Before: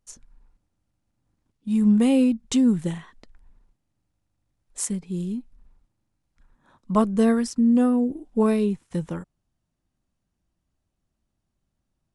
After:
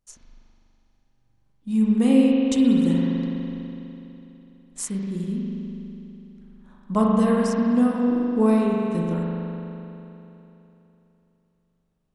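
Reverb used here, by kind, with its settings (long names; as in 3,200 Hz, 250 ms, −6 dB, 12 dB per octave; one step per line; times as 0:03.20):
spring reverb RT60 3.2 s, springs 41 ms, chirp 25 ms, DRR −3 dB
level −2.5 dB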